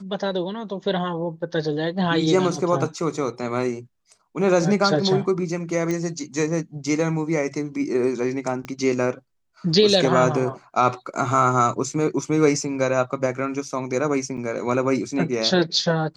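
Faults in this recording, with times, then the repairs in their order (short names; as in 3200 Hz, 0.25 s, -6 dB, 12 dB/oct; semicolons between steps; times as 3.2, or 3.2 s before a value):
5.91 pop -14 dBFS
8.65 pop -18 dBFS
14.37–14.38 gap 6.6 ms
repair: de-click; interpolate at 14.37, 6.6 ms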